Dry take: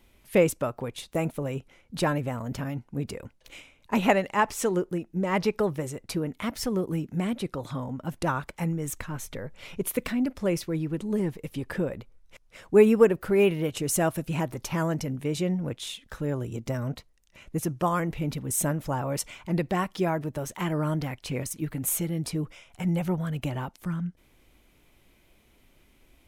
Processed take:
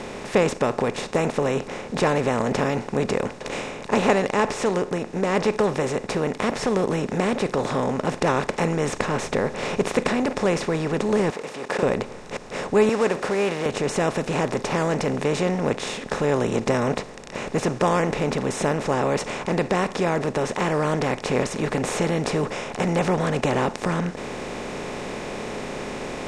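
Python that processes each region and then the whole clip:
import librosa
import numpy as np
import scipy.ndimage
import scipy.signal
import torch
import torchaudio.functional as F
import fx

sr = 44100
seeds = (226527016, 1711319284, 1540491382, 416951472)

y = fx.chain(x, sr, fx.law_mismatch(coded='mu'),
    fx.highpass(hz=610.0, slope=12),
    fx.level_steps(step_db=20), at=(11.3, 11.83))
y = fx.chain(y, sr, fx.law_mismatch(coded='mu'),
    fx.highpass(hz=700.0, slope=6), at=(12.89, 13.66))
y = fx.bin_compress(y, sr, power=0.4)
y = scipy.signal.sosfilt(scipy.signal.butter(4, 7100.0, 'lowpass', fs=sr, output='sos'), y)
y = fx.rider(y, sr, range_db=3, speed_s=2.0)
y = y * 10.0 ** (-2.5 / 20.0)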